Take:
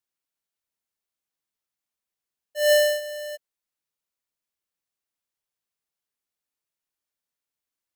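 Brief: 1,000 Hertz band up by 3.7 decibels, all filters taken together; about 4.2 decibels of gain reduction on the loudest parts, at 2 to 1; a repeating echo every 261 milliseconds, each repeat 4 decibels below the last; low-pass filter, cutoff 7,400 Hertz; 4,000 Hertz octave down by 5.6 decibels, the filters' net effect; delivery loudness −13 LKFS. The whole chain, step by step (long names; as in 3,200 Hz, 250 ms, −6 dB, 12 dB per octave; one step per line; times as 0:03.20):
low-pass filter 7,400 Hz
parametric band 1,000 Hz +7 dB
parametric band 4,000 Hz −9 dB
downward compressor 2 to 1, threshold −21 dBFS
repeating echo 261 ms, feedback 63%, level −4 dB
level +12.5 dB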